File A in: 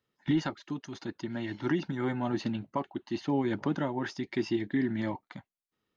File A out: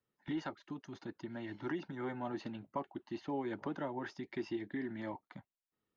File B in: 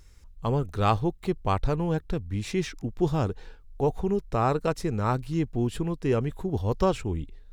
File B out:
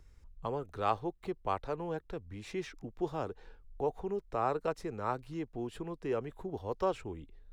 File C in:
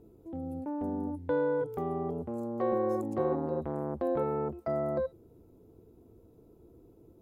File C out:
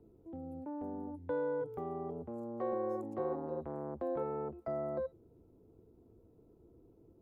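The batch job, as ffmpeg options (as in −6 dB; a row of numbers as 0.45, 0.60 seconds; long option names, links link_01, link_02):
-filter_complex "[0:a]highshelf=frequency=2700:gain=-9.5,acrossover=split=340|520[link_01][link_02][link_03];[link_01]acompressor=threshold=-40dB:ratio=6[link_04];[link_04][link_02][link_03]amix=inputs=3:normalize=0,volume=-5dB"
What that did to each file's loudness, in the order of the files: −9.5, −9.5, −6.5 LU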